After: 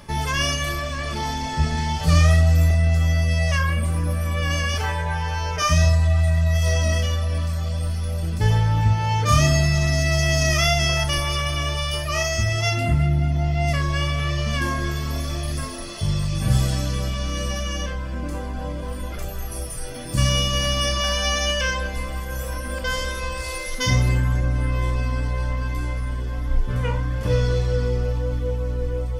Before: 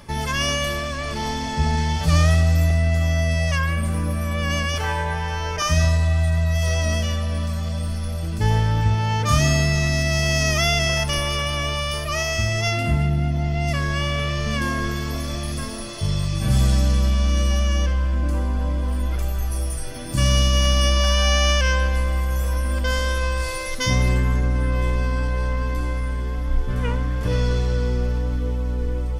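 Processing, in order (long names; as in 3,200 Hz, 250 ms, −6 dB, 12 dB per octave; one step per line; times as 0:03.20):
reverb reduction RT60 0.53 s
convolution reverb RT60 0.35 s, pre-delay 18 ms, DRR 5.5 dB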